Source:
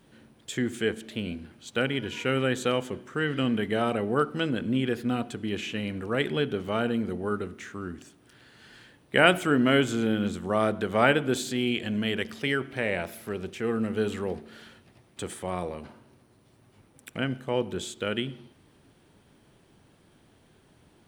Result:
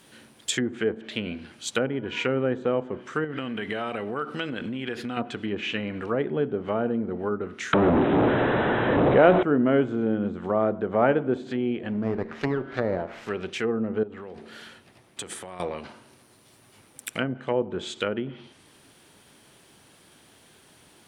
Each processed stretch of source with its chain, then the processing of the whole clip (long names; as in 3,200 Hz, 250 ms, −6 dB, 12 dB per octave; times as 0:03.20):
0:03.24–0:05.17: high-shelf EQ 7,800 Hz +8 dB + downward compressor, threshold −29 dBFS
0:07.73–0:09.43: linear delta modulator 32 kbit/s, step −15 dBFS + linear-phase brick-wall low-pass 4,000 Hz + parametric band 520 Hz +4 dB 1.4 octaves
0:11.89–0:13.30: hum removal 79.14 Hz, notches 34 + windowed peak hold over 9 samples
0:14.03–0:15.60: high-shelf EQ 2,600 Hz −8 dB + downward compressor 12 to 1, threshold −37 dBFS
whole clip: treble cut that deepens with the level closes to 740 Hz, closed at −25 dBFS; spectral tilt +2.5 dB per octave; level +6 dB